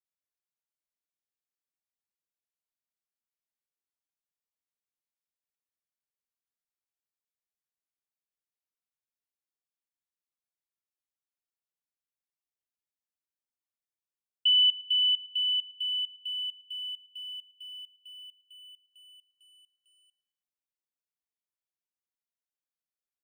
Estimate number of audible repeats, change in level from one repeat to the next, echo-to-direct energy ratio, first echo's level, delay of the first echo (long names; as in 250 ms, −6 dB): 2, −7.5 dB, −20.0 dB, −21.0 dB, 111 ms